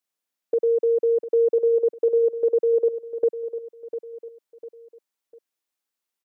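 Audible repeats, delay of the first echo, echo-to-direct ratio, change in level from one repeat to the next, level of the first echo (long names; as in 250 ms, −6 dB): 3, 700 ms, −11.0 dB, −7.5 dB, −12.0 dB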